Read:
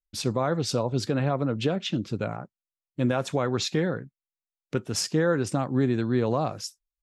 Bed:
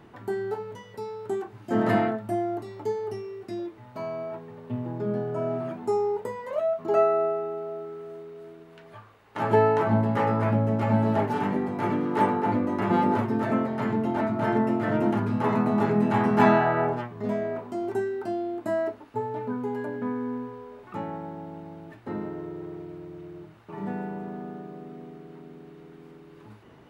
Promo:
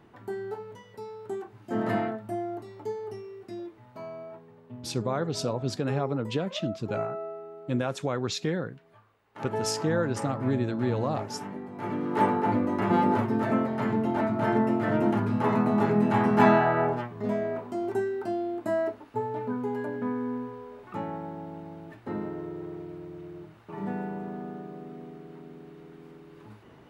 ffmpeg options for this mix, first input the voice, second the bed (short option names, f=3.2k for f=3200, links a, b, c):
-filter_complex "[0:a]adelay=4700,volume=-3.5dB[a];[1:a]volume=6dB,afade=t=out:st=3.73:d=0.98:silence=0.473151,afade=t=in:st=11.7:d=0.56:silence=0.281838[b];[a][b]amix=inputs=2:normalize=0"